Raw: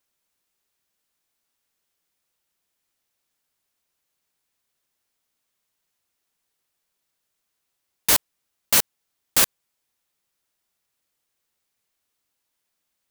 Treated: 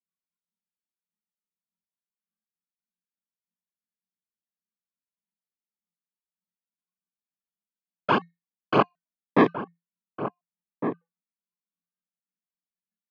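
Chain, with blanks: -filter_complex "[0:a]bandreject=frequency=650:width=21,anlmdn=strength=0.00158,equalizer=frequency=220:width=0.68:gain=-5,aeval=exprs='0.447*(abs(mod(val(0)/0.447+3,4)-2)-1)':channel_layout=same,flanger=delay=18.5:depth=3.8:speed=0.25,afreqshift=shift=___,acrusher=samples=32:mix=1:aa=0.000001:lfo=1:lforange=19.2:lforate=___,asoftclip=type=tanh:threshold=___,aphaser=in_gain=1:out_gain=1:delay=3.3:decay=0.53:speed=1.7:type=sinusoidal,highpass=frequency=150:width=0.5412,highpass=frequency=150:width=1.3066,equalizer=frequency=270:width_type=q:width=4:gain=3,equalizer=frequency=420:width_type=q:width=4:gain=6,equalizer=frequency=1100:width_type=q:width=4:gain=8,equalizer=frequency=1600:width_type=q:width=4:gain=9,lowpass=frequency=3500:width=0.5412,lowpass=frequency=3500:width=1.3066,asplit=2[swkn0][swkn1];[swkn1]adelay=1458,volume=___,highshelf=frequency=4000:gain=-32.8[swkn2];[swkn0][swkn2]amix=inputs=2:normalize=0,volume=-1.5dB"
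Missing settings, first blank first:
170, 0.21, -14.5dB, -9dB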